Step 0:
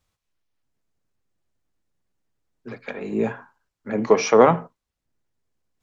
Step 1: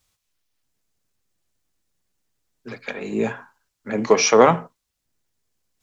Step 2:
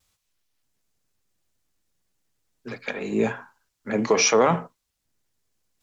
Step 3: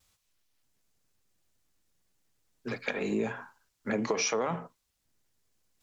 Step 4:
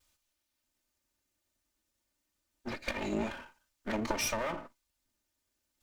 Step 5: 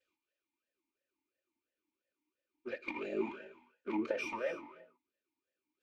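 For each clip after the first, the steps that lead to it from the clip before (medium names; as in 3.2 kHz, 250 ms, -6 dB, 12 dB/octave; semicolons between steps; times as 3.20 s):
treble shelf 2.6 kHz +11 dB
peak limiter -8.5 dBFS, peak gain reduction 7 dB; vibrato 0.5 Hz 12 cents
compression 6:1, threshold -27 dBFS, peak gain reduction 13 dB
comb filter that takes the minimum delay 3.3 ms; trim -1.5 dB
on a send at -14.5 dB: reverberation, pre-delay 3 ms; on the sum: talking filter e-u 2.9 Hz; trim +8 dB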